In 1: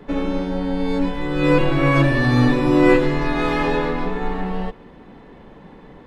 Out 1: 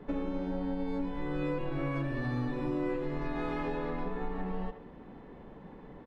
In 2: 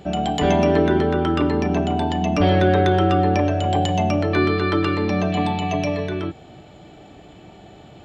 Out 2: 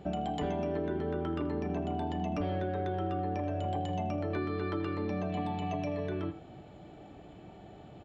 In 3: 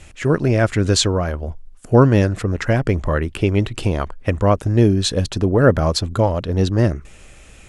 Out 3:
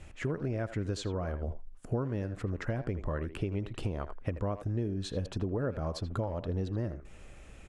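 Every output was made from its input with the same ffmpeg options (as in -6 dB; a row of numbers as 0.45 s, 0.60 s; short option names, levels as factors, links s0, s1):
-filter_complex "[0:a]asplit=2[s0][s1];[s1]adelay=80,highpass=300,lowpass=3400,asoftclip=type=hard:threshold=0.335,volume=0.251[s2];[s0][s2]amix=inputs=2:normalize=0,acompressor=threshold=0.0631:ratio=6,highshelf=f=2200:g=-9.5,volume=0.501"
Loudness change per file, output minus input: -16.0 LU, -14.5 LU, -17.5 LU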